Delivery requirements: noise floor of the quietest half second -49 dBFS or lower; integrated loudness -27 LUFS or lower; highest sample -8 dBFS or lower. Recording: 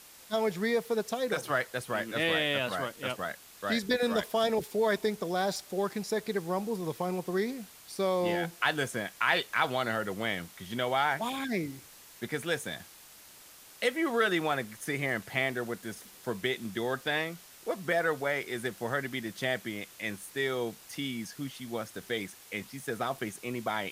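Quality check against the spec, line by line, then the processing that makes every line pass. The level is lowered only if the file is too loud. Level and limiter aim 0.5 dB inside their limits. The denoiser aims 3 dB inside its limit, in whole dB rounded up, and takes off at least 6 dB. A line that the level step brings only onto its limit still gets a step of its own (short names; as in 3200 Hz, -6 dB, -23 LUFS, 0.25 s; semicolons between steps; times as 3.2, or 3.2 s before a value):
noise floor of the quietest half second -53 dBFS: OK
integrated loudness -32.0 LUFS: OK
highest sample -10.5 dBFS: OK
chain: none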